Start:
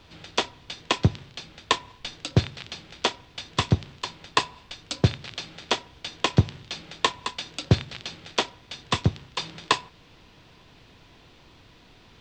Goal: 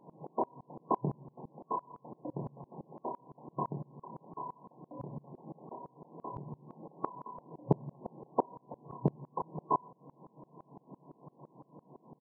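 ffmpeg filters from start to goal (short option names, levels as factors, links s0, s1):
-filter_complex "[0:a]asplit=2[s0][s1];[s1]adelay=27,volume=0.355[s2];[s0][s2]amix=inputs=2:normalize=0,asplit=2[s3][s4];[s4]acompressor=threshold=0.0224:ratio=6,volume=0.841[s5];[s3][s5]amix=inputs=2:normalize=0,asoftclip=type=tanh:threshold=0.133,afftfilt=real='re*between(b*sr/4096,120,1100)':imag='im*between(b*sr/4096,120,1100)':win_size=4096:overlap=0.75,aeval=exprs='val(0)*pow(10,-27*if(lt(mod(-5.9*n/s,1),2*abs(-5.9)/1000),1-mod(-5.9*n/s,1)/(2*abs(-5.9)/1000),(mod(-5.9*n/s,1)-2*abs(-5.9)/1000)/(1-2*abs(-5.9)/1000))/20)':c=same,volume=1.5"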